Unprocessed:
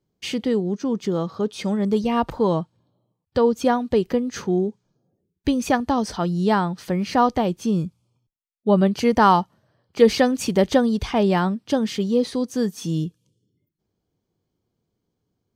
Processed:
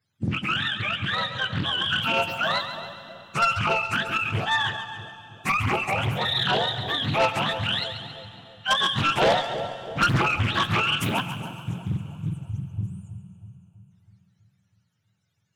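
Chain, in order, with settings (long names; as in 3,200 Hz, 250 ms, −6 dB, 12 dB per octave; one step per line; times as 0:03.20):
frequency axis turned over on the octave scale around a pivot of 800 Hz
0:04.27–0:05.60: flat-topped bell 890 Hz +14.5 dB 1.1 octaves
in parallel at +0.5 dB: output level in coarse steps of 17 dB
0:11.21–0:13.92: on the sum: time-frequency box erased 210–6,100 Hz
soft clipping −13.5 dBFS, distortion −10 dB
on a send: echo with a time of its own for lows and highs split 750 Hz, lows 324 ms, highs 138 ms, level −10 dB
on the sum: four-comb reverb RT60 3.4 s, combs from 31 ms, DRR 13.5 dB
highs frequency-modulated by the lows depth 0.65 ms
level −2 dB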